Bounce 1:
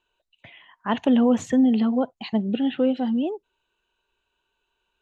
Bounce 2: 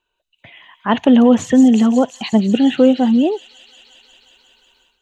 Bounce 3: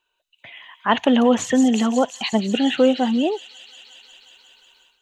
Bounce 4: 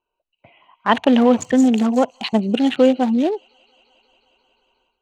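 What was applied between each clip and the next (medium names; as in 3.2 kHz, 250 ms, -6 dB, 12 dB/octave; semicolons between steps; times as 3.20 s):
feedback echo behind a high-pass 179 ms, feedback 78%, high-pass 5 kHz, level -3 dB; level rider gain up to 13.5 dB
bass shelf 420 Hz -12 dB; trim +2 dB
local Wiener filter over 25 samples; trim +2.5 dB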